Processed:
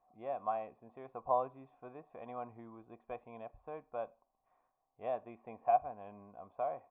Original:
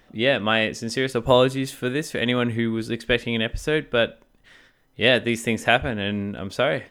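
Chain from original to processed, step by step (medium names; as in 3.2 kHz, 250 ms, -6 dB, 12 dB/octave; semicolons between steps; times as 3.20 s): cascade formant filter a; trim -2.5 dB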